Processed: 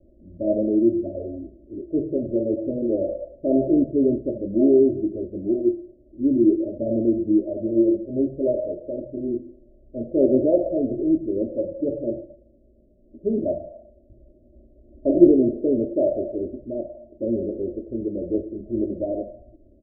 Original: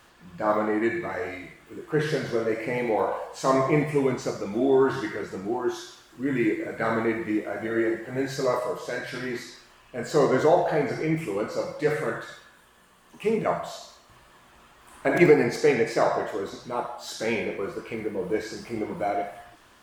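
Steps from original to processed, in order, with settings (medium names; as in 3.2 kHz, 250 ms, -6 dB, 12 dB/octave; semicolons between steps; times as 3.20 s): steep low-pass 620 Hz 96 dB/octave; bass shelf 180 Hz +7.5 dB; comb 3.2 ms, depth 88%; trim +1 dB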